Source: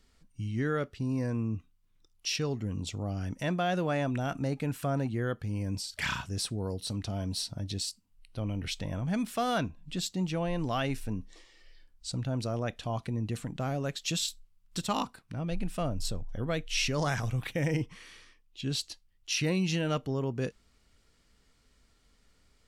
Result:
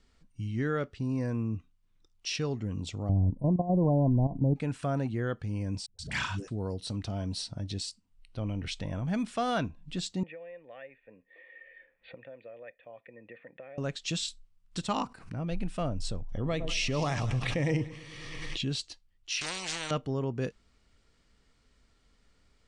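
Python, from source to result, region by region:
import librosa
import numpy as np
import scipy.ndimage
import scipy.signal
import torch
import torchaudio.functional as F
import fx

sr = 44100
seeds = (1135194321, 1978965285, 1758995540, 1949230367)

y = fx.chain(x, sr, fx.tilt_eq(slope=-3.5),
    fx.level_steps(step_db=12),
    fx.brickwall_bandstop(low_hz=1100.0, high_hz=8600.0), at=(3.09, 4.56))
y = fx.chain(y, sr, fx.high_shelf(hz=9400.0, db=8.0),
    fx.dispersion(late='highs', ms=128.0, hz=310.0), at=(5.86, 6.48))
y = fx.chain(y, sr, fx.formant_cascade(vowel='e'),
    fx.tilt_eq(slope=4.5),
    fx.band_squash(depth_pct=100), at=(10.23, 13.78))
y = fx.chain(y, sr, fx.peak_eq(hz=3500.0, db=-9.0, octaves=0.33),
    fx.pre_swell(db_per_s=100.0), at=(14.97, 15.47))
y = fx.chain(y, sr, fx.notch(hz=1500.0, q=5.3),
    fx.echo_split(split_hz=960.0, low_ms=108, high_ms=192, feedback_pct=52, wet_db=-15.5),
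    fx.pre_swell(db_per_s=28.0), at=(16.32, 18.69))
y = fx.chain(y, sr, fx.lowpass(hz=7400.0, slope=24),
    fx.bass_treble(bass_db=-1, treble_db=4),
    fx.spectral_comp(ratio=10.0), at=(19.41, 19.91))
y = scipy.signal.sosfilt(scipy.signal.butter(12, 10000.0, 'lowpass', fs=sr, output='sos'), y)
y = fx.high_shelf(y, sr, hz=6500.0, db=-7.0)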